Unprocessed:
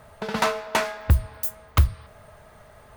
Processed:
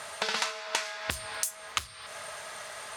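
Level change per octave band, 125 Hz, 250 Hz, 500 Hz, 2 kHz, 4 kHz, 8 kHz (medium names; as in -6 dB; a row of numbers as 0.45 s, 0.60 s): -27.0 dB, -16.5 dB, -10.0 dB, -2.5 dB, +2.0 dB, +4.0 dB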